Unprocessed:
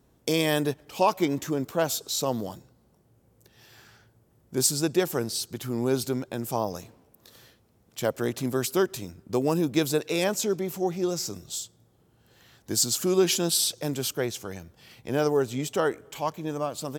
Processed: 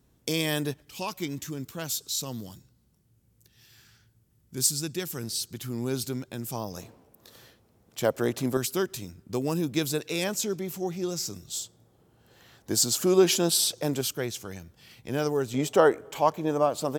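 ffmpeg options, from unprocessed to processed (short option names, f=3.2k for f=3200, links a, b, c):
-af "asetnsamples=n=441:p=0,asendcmd='0.82 equalizer g -15;5.23 equalizer g -8.5;6.77 equalizer g 2;8.57 equalizer g -6;11.56 equalizer g 3;14.01 equalizer g -4.5;15.54 equalizer g 7',equalizer=f=650:t=o:w=2.4:g=-6.5"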